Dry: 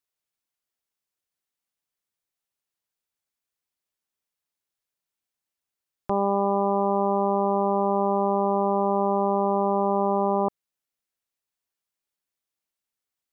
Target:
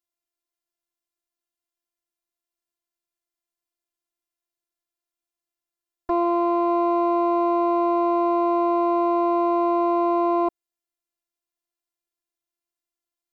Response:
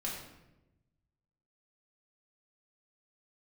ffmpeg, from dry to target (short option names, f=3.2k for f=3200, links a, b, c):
-filter_complex "[0:a]asettb=1/sr,asplit=3[a][b][c];[a]atrim=end=6.234[d];[b]atrim=start=6.23:end=6.69,asetpts=PTS-STARTPTS,afade=t=in:d=0.004:c=qsin,afade=t=out:st=0.456:d=0.004:c=qsin,bandreject=f=780:w=22[e];[c]atrim=start=6.686[f];[d][e]acrossfade=d=0.004:c1=hsin:c2=qsin[g];[g][f]acrossfade=d=0.004:c1=qsin:c2=hsin,afftfilt=real='hypot(re,im)*cos(PI*b)':imag='0':win_size=512:overlap=0.75,asplit=2[h][i];[i]adynamicsmooth=sensitivity=2.5:basefreq=1.1k,volume=2.5dB[j];[h][j]amix=inputs=2:normalize=0,lowshelf=f=200:g=-5.5"